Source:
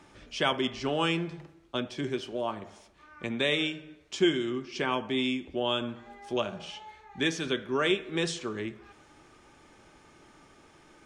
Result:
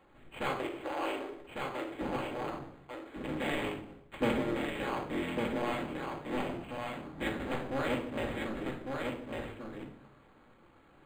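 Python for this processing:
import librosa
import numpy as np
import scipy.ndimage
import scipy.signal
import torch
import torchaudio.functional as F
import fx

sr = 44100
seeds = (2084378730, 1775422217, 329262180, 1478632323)

y = fx.cycle_switch(x, sr, every=3, mode='inverted')
y = fx.ellip_highpass(y, sr, hz=290.0, order=4, stop_db=40, at=(0.52, 2.01))
y = fx.doubler(y, sr, ms=15.0, db=-2.5, at=(4.28, 4.7))
y = y + 10.0 ** (-4.0 / 20.0) * np.pad(y, (int(1151 * sr / 1000.0), 0))[:len(y)]
y = fx.room_shoebox(y, sr, seeds[0], volume_m3=950.0, walls='furnished', distance_m=2.3)
y = np.interp(np.arange(len(y)), np.arange(len(y))[::8], y[::8])
y = y * 10.0 ** (-8.5 / 20.0)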